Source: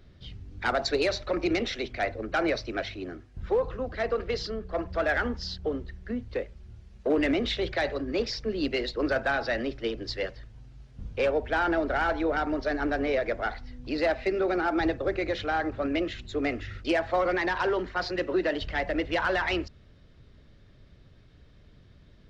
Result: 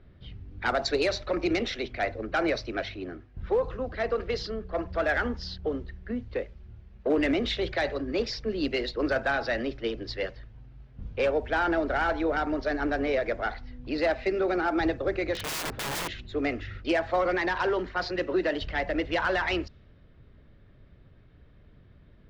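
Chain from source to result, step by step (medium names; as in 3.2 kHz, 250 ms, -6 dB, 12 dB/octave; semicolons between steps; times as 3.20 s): level-controlled noise filter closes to 2.3 kHz, open at -21.5 dBFS; 15.34–16.09 s: integer overflow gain 27.5 dB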